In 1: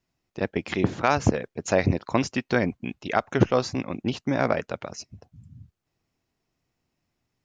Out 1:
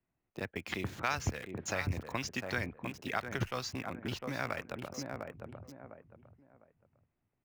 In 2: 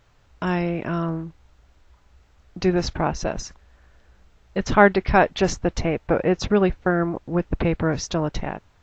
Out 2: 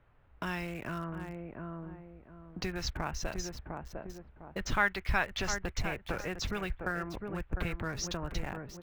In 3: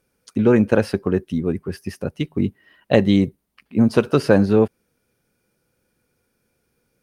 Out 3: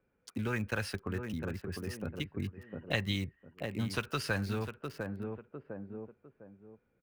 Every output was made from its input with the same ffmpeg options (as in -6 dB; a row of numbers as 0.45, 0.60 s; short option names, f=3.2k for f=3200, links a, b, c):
-filter_complex "[0:a]asplit=2[a][b];[b]adelay=703,lowpass=f=3.1k:p=1,volume=-9.5dB,asplit=2[c][d];[d]adelay=703,lowpass=f=3.1k:p=1,volume=0.25,asplit=2[e][f];[f]adelay=703,lowpass=f=3.1k:p=1,volume=0.25[g];[a][c][e][g]amix=inputs=4:normalize=0,acrossover=split=100|1200|2700[h][i][j][k];[i]acompressor=threshold=-32dB:ratio=6[l];[k]acrusher=bits=7:mix=0:aa=0.000001[m];[h][l][j][m]amix=inputs=4:normalize=0,volume=-6dB"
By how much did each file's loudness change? -12.0, -13.5, -18.0 LU